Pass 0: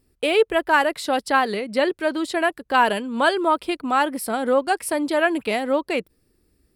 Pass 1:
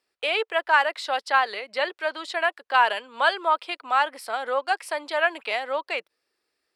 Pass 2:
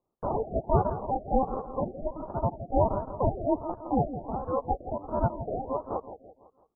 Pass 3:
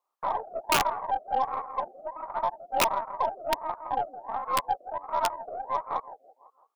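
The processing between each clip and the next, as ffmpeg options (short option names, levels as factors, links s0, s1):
-filter_complex "[0:a]highpass=f=360:p=1,acrossover=split=550 6300:gain=0.0708 1 0.141[s0][s1][s2];[s0][s1][s2]amix=inputs=3:normalize=0"
-af "acrusher=samples=28:mix=1:aa=0.000001,aecho=1:1:167|334|501|668|835:0.282|0.124|0.0546|0.024|0.0106,afftfilt=real='re*lt(b*sr/1024,760*pow(1700/760,0.5+0.5*sin(2*PI*1.4*pts/sr)))':imag='im*lt(b*sr/1024,760*pow(1700/760,0.5+0.5*sin(2*PI*1.4*pts/sr)))':win_size=1024:overlap=0.75,volume=0.668"
-af "highpass=f=1100:t=q:w=1.9,aeval=exprs='(mod(9.44*val(0)+1,2)-1)/9.44':c=same,aeval=exprs='0.106*(cos(1*acos(clip(val(0)/0.106,-1,1)))-cos(1*PI/2))+0.00422*(cos(6*acos(clip(val(0)/0.106,-1,1)))-cos(6*PI/2))+0.00119*(cos(7*acos(clip(val(0)/0.106,-1,1)))-cos(7*PI/2))':c=same,volume=1.58"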